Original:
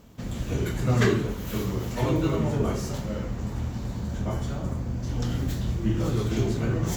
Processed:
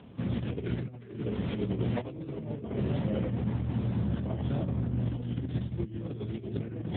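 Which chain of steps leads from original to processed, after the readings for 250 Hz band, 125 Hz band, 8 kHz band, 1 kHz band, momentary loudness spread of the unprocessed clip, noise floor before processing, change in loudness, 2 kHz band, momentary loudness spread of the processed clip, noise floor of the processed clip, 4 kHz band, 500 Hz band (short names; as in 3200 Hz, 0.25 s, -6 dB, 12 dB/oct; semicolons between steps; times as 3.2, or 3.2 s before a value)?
-4.0 dB, -5.0 dB, under -40 dB, -10.0 dB, 8 LU, -34 dBFS, -5.5 dB, -12.0 dB, 7 LU, -45 dBFS, -10.0 dB, -7.5 dB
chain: dynamic EQ 1200 Hz, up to -6 dB, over -48 dBFS, Q 2; negative-ratio compressor -30 dBFS, ratio -0.5; AMR-NB 7.95 kbps 8000 Hz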